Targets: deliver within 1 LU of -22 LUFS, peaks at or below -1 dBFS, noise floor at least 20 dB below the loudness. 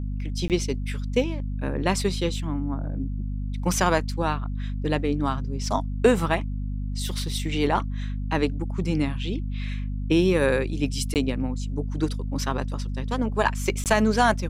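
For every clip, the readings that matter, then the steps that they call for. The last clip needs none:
dropouts 3; longest dropout 18 ms; hum 50 Hz; highest harmonic 250 Hz; hum level -26 dBFS; loudness -26.0 LUFS; peak level -7.0 dBFS; loudness target -22.0 LUFS
-> interpolate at 0.48/11.14/13.84 s, 18 ms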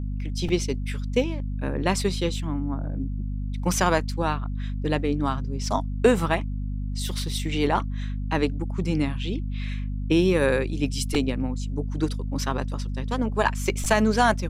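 dropouts 0; hum 50 Hz; highest harmonic 250 Hz; hum level -26 dBFS
-> de-hum 50 Hz, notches 5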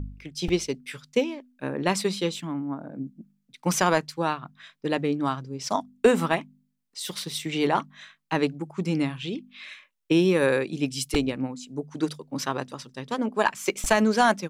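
hum not found; loudness -26.5 LUFS; peak level -8.0 dBFS; loudness target -22.0 LUFS
-> trim +4.5 dB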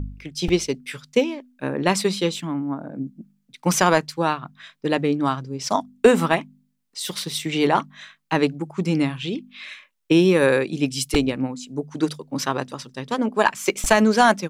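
loudness -22.0 LUFS; peak level -3.5 dBFS; noise floor -69 dBFS

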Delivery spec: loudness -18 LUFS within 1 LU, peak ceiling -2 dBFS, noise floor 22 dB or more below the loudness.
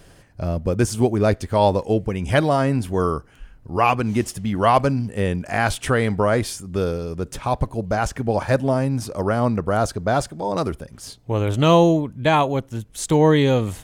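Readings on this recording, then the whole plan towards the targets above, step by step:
loudness -21.0 LUFS; peak level -4.0 dBFS; loudness target -18.0 LUFS
-> trim +3 dB; peak limiter -2 dBFS

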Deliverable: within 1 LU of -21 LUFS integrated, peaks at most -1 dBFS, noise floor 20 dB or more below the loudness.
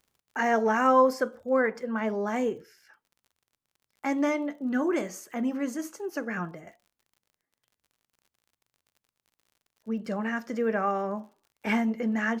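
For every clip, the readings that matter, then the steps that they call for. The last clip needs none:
tick rate 47 per s; loudness -28.0 LUFS; peak level -10.5 dBFS; loudness target -21.0 LUFS
-> de-click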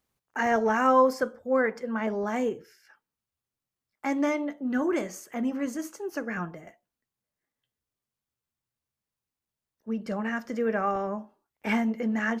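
tick rate 0.24 per s; loudness -28.0 LUFS; peak level -10.5 dBFS; loudness target -21.0 LUFS
-> trim +7 dB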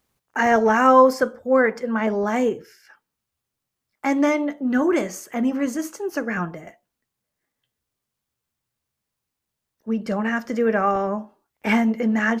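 loudness -21.0 LUFS; peak level -3.5 dBFS; noise floor -83 dBFS

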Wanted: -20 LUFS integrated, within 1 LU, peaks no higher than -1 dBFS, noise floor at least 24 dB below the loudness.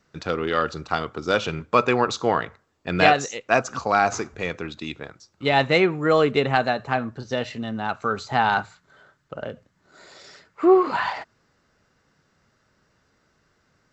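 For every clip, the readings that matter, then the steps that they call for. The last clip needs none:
loudness -22.5 LUFS; peak level -2.0 dBFS; loudness target -20.0 LUFS
-> trim +2.5 dB; peak limiter -1 dBFS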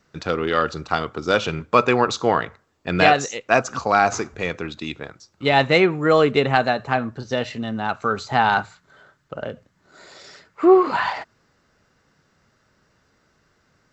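loudness -20.0 LUFS; peak level -1.0 dBFS; noise floor -65 dBFS

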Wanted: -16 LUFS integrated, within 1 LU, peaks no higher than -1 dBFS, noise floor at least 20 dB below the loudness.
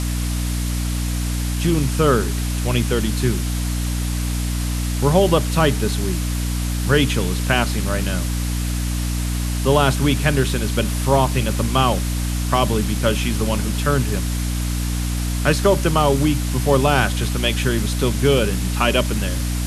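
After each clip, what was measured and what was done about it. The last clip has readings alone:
hum 60 Hz; highest harmonic 300 Hz; hum level -20 dBFS; noise floor -22 dBFS; noise floor target -40 dBFS; loudness -20.0 LUFS; peak level -1.5 dBFS; loudness target -16.0 LUFS
-> hum notches 60/120/180/240/300 Hz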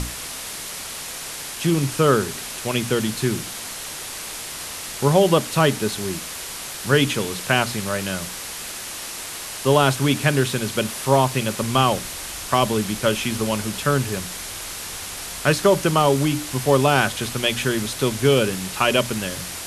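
hum not found; noise floor -33 dBFS; noise floor target -42 dBFS
-> noise reduction 9 dB, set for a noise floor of -33 dBFS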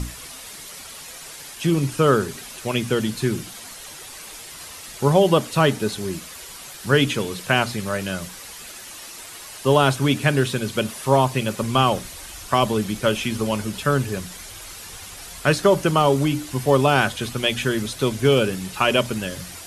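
noise floor -39 dBFS; noise floor target -41 dBFS
-> noise reduction 6 dB, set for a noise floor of -39 dBFS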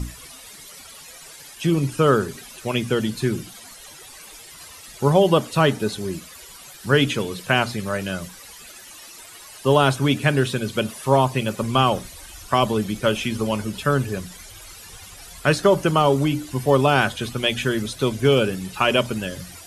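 noise floor -43 dBFS; loudness -21.0 LUFS; peak level -2.0 dBFS; loudness target -16.0 LUFS
-> trim +5 dB; peak limiter -1 dBFS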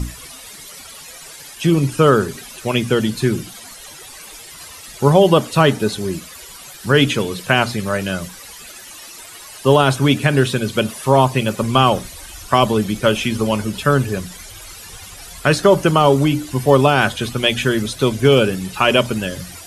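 loudness -16.5 LUFS; peak level -1.0 dBFS; noise floor -38 dBFS

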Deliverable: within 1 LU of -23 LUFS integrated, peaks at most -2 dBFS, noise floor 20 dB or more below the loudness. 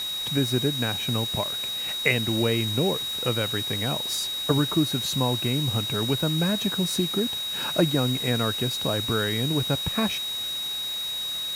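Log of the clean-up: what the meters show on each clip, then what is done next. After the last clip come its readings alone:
steady tone 3.8 kHz; tone level -28 dBFS; noise floor -31 dBFS; noise floor target -45 dBFS; loudness -24.5 LUFS; peak level -5.0 dBFS; loudness target -23.0 LUFS
-> band-stop 3.8 kHz, Q 30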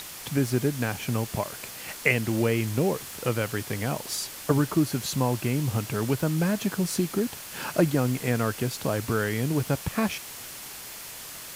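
steady tone not found; noise floor -41 dBFS; noise floor target -48 dBFS
-> noise reduction 7 dB, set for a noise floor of -41 dBFS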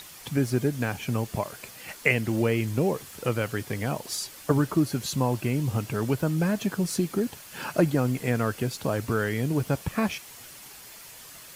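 noise floor -46 dBFS; noise floor target -48 dBFS
-> noise reduction 6 dB, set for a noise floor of -46 dBFS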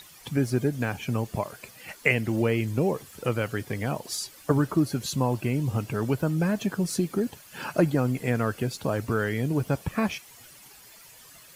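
noise floor -51 dBFS; loudness -27.5 LUFS; peak level -5.0 dBFS; loudness target -23.0 LUFS
-> trim +4.5 dB; peak limiter -2 dBFS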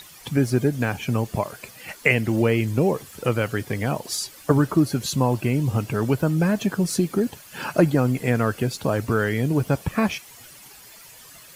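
loudness -23.0 LUFS; peak level -2.0 dBFS; noise floor -46 dBFS

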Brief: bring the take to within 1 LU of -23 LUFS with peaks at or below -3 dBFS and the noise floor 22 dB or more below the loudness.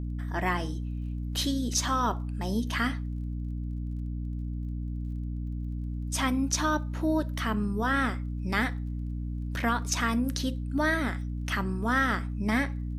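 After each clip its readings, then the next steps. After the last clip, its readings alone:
tick rate 22 per s; hum 60 Hz; highest harmonic 300 Hz; hum level -30 dBFS; loudness -30.0 LUFS; peak level -14.0 dBFS; loudness target -23.0 LUFS
-> de-click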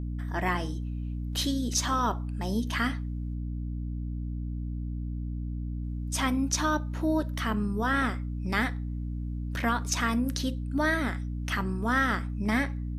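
tick rate 0.077 per s; hum 60 Hz; highest harmonic 300 Hz; hum level -31 dBFS
-> de-hum 60 Hz, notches 5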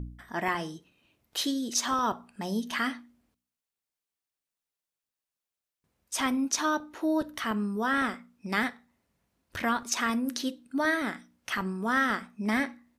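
hum not found; loudness -30.0 LUFS; peak level -14.5 dBFS; loudness target -23.0 LUFS
-> trim +7 dB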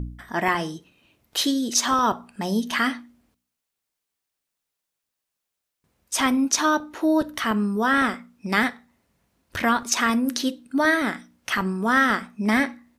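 loudness -23.0 LUFS; peak level -7.5 dBFS; noise floor -83 dBFS

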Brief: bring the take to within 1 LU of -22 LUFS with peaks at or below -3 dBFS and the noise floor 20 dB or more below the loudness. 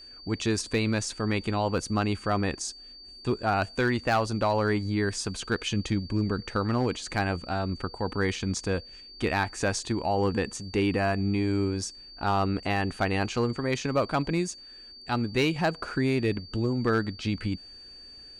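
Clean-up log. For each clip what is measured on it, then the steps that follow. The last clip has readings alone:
clipped samples 0.3%; clipping level -17.0 dBFS; steady tone 4.6 kHz; tone level -45 dBFS; loudness -28.5 LUFS; peak level -17.0 dBFS; loudness target -22.0 LUFS
-> clip repair -17 dBFS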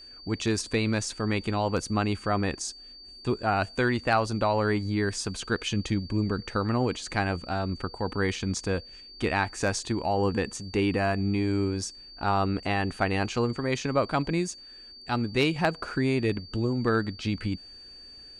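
clipped samples 0.0%; steady tone 4.6 kHz; tone level -45 dBFS
-> band-stop 4.6 kHz, Q 30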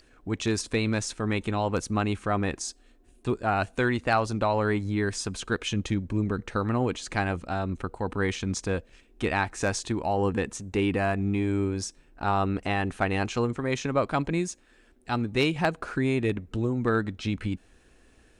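steady tone not found; loudness -28.5 LUFS; peak level -8.0 dBFS; loudness target -22.0 LUFS
-> trim +6.5 dB; peak limiter -3 dBFS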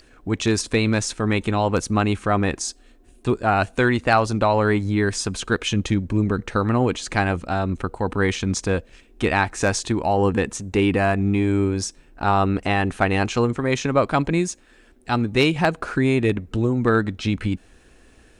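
loudness -22.0 LUFS; peak level -3.0 dBFS; noise floor -53 dBFS

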